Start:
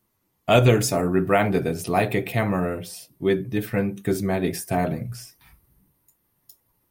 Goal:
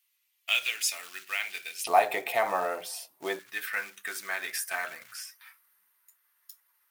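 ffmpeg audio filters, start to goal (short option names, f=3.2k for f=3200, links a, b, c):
-af "acompressor=threshold=-23dB:ratio=2,acrusher=bits=6:mode=log:mix=0:aa=0.000001,asetnsamples=n=441:p=0,asendcmd='1.87 highpass f 770;3.39 highpass f 1500',highpass=f=2.6k:t=q:w=2.2"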